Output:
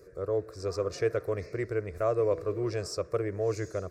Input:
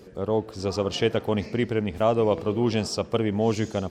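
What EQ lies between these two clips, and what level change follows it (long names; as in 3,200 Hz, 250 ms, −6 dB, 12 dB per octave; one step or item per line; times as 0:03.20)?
phaser with its sweep stopped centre 840 Hz, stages 6
−3.5 dB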